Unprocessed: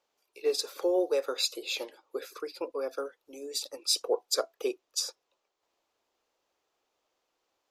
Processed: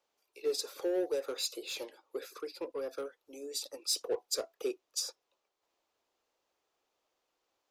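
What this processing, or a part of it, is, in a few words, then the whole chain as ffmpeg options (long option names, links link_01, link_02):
one-band saturation: -filter_complex "[0:a]acrossover=split=510|4700[link_01][link_02][link_03];[link_02]asoftclip=type=tanh:threshold=-39dB[link_04];[link_01][link_04][link_03]amix=inputs=3:normalize=0,volume=-2.5dB"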